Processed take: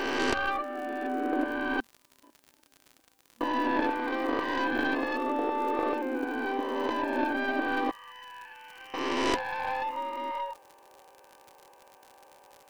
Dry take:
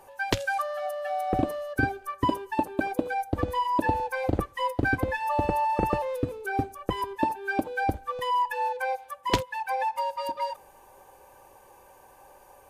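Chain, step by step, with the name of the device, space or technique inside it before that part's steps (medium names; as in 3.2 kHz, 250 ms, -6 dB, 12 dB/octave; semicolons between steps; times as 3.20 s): reverse spectral sustain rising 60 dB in 2.83 s; 1.80–3.41 s: gate -13 dBFS, range -45 dB; FFT band-pass 230–3200 Hz; 7.91–8.94 s: differentiator; record under a worn stylus (tracing distortion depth 0.16 ms; crackle 78 per s -32 dBFS; white noise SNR 41 dB); trim -6.5 dB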